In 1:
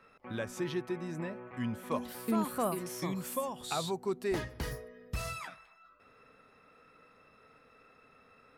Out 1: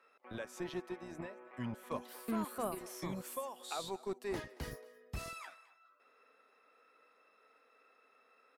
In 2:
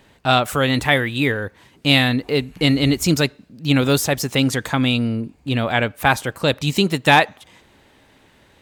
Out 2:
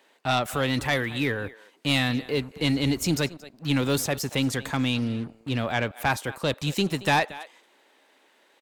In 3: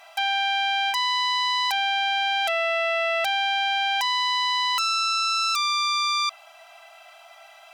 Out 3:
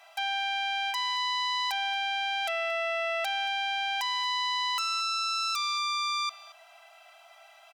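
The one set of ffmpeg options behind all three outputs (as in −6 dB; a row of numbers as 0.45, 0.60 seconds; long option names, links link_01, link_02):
-filter_complex "[0:a]aecho=1:1:227:0.0944,acrossover=split=300|2300[link_01][link_02][link_03];[link_01]acrusher=bits=5:mix=0:aa=0.5[link_04];[link_04][link_02][link_03]amix=inputs=3:normalize=0,asoftclip=type=tanh:threshold=-8.5dB,volume=-6dB"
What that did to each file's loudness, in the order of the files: −6.5, −7.5, −6.5 LU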